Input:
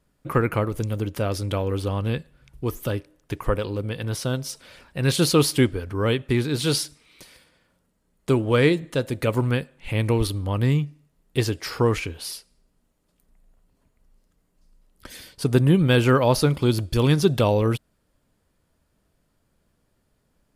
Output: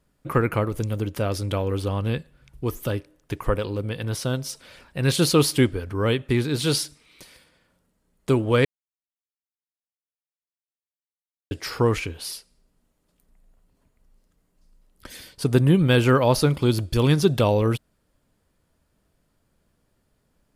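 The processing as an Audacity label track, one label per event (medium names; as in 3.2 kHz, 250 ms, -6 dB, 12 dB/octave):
8.650000	11.510000	mute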